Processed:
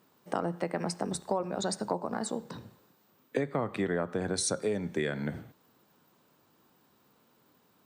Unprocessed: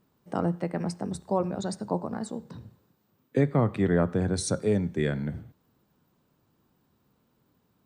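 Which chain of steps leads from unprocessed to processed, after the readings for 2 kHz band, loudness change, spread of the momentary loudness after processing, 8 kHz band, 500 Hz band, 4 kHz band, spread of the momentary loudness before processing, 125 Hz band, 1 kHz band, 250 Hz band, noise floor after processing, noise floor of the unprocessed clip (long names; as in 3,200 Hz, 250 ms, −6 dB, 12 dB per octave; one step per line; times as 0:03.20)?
0.0 dB, −4.5 dB, 7 LU, +2.5 dB, −3.5 dB, +2.5 dB, 11 LU, −10.0 dB, −1.0 dB, −6.5 dB, −67 dBFS, −71 dBFS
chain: high-pass filter 460 Hz 6 dB per octave
downward compressor 5 to 1, threshold −35 dBFS, peak gain reduction 12 dB
level +7.5 dB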